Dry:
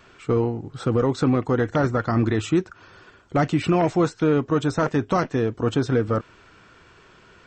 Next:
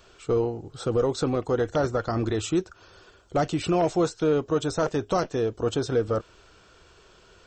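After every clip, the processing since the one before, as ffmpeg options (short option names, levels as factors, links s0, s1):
-af "equalizer=f=125:t=o:w=1:g=-9,equalizer=f=250:t=o:w=1:g=-10,equalizer=f=1000:t=o:w=1:g=-6,equalizer=f=2000:t=o:w=1:g=-11,volume=1.5"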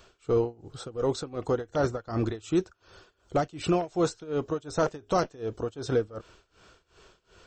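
-af "tremolo=f=2.7:d=0.92"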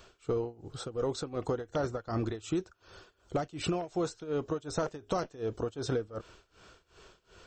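-af "acompressor=threshold=0.0398:ratio=6"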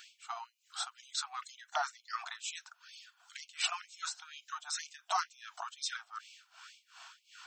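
-af "afftfilt=real='re*gte(b*sr/1024,640*pow(2200/640,0.5+0.5*sin(2*PI*2.1*pts/sr)))':imag='im*gte(b*sr/1024,640*pow(2200/640,0.5+0.5*sin(2*PI*2.1*pts/sr)))':win_size=1024:overlap=0.75,volume=2"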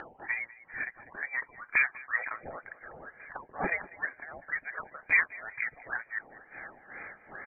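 -filter_complex "[0:a]lowpass=f=2600:t=q:w=0.5098,lowpass=f=2600:t=q:w=0.6013,lowpass=f=2600:t=q:w=0.9,lowpass=f=2600:t=q:w=2.563,afreqshift=-3100,asplit=2[s0][s1];[s1]adelay=196,lowpass=f=2400:p=1,volume=0.119,asplit=2[s2][s3];[s3]adelay=196,lowpass=f=2400:p=1,volume=0.42,asplit=2[s4][s5];[s5]adelay=196,lowpass=f=2400:p=1,volume=0.42[s6];[s0][s2][s4][s6]amix=inputs=4:normalize=0,acompressor=mode=upward:threshold=0.00501:ratio=2.5,volume=2.66"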